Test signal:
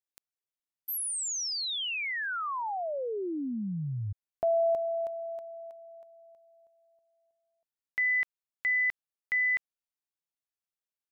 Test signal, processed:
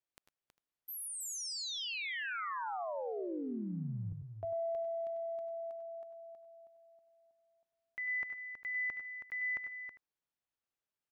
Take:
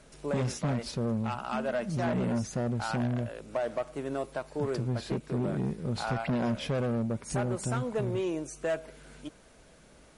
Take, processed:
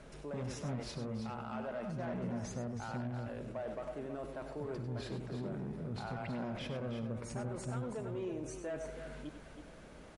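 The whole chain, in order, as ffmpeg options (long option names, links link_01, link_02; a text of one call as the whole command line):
ffmpeg -i in.wav -af "highshelf=frequency=4200:gain=-12,areverse,acompressor=threshold=-43dB:ratio=4:attack=0.55:release=76:knee=6:detection=peak,areverse,aecho=1:1:96|107|322|401:0.316|0.15|0.376|0.106,volume=3dB" out.wav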